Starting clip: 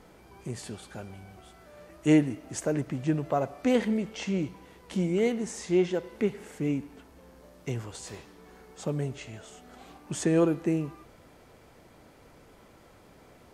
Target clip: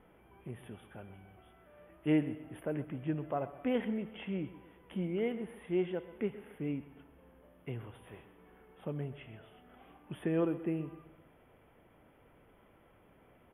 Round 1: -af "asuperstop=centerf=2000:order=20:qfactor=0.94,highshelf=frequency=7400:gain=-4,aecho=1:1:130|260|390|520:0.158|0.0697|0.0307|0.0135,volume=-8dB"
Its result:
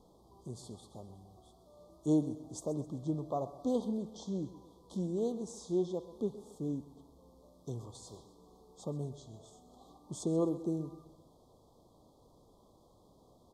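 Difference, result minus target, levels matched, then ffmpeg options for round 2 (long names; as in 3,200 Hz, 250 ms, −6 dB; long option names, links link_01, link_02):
8,000 Hz band +18.0 dB
-af "asuperstop=centerf=5900:order=20:qfactor=0.94,highshelf=frequency=7400:gain=-4,aecho=1:1:130|260|390|520:0.158|0.0697|0.0307|0.0135,volume=-8dB"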